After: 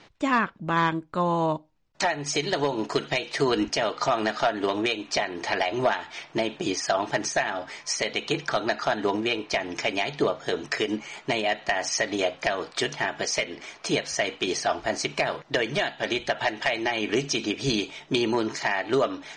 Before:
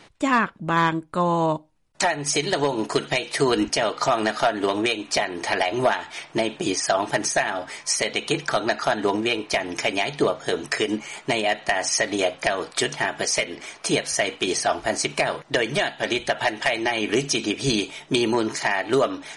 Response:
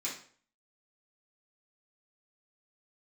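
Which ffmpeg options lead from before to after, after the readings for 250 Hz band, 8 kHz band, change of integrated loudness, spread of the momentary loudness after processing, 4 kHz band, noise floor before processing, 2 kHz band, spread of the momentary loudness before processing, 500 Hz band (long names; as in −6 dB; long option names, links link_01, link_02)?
−3.0 dB, −6.0 dB, −3.0 dB, 4 LU, −3.0 dB, −50 dBFS, −3.0 dB, 4 LU, −3.0 dB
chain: -af "lowpass=frequency=6600:width=0.5412,lowpass=frequency=6600:width=1.3066,volume=-3dB"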